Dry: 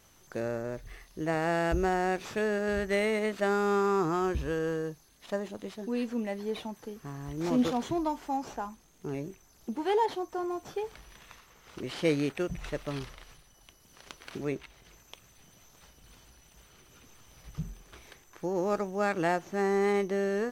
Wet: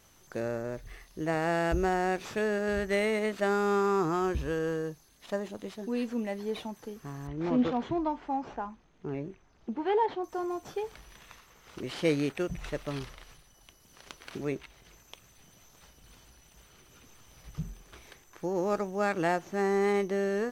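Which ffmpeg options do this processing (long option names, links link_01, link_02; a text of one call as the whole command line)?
ffmpeg -i in.wav -filter_complex "[0:a]asettb=1/sr,asplit=3[link_01][link_02][link_03];[link_01]atrim=end=7.274[link_04];[link_02]atrim=start=7.27:end=10.24,asetpts=PTS-STARTPTS,afade=type=in:duration=0.004:curve=qsin,afade=type=out:start_time=2.966:duration=0.004:curve=qsin,lowpass=2800[link_05];[link_03]atrim=start=10.236[link_06];[link_04][link_05]acrossfade=duration=0.004:curve1=hsin:curve2=qsin[link_07];[link_07][link_06]acrossfade=duration=0.004:curve1=qsin:curve2=hsin" out.wav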